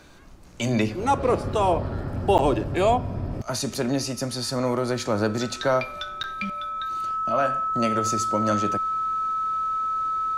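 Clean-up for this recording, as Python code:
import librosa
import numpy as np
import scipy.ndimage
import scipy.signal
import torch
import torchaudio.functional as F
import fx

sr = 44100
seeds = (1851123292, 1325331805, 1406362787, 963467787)

y = fx.notch(x, sr, hz=1300.0, q=30.0)
y = fx.fix_interpolate(y, sr, at_s=(2.38, 6.23), length_ms=8.7)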